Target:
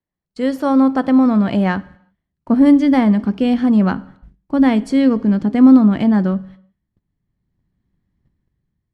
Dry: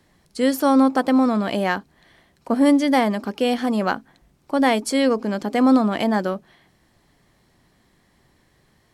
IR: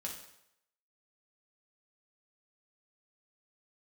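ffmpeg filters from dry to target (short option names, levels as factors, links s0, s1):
-filter_complex "[0:a]asubboost=boost=7:cutoff=220,agate=range=0.0398:threshold=0.00794:ratio=16:detection=peak,asplit=2[s0][s1];[1:a]atrim=start_sample=2205,afade=t=out:st=0.41:d=0.01,atrim=end_sample=18522[s2];[s1][s2]afir=irnorm=-1:irlink=0,volume=0.251[s3];[s0][s3]amix=inputs=2:normalize=0,dynaudnorm=f=330:g=7:m=3.98,aemphasis=mode=reproduction:type=75fm,volume=0.841"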